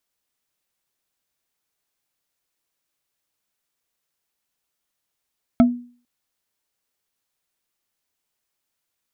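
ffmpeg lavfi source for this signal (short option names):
-f lavfi -i "aevalsrc='0.447*pow(10,-3*t/0.43)*sin(2*PI*243*t)+0.2*pow(10,-3*t/0.127)*sin(2*PI*670*t)+0.0891*pow(10,-3*t/0.057)*sin(2*PI*1313.2*t)+0.0398*pow(10,-3*t/0.031)*sin(2*PI*2170.7*t)+0.0178*pow(10,-3*t/0.019)*sin(2*PI*3241.6*t)':d=0.45:s=44100"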